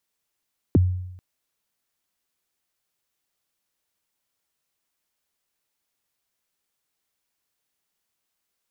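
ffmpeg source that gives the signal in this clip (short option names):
-f lavfi -i "aevalsrc='0.282*pow(10,-3*t/0.85)*sin(2*PI*(420*0.022/log(91/420)*(exp(log(91/420)*min(t,0.022)/0.022)-1)+91*max(t-0.022,0)))':d=0.44:s=44100"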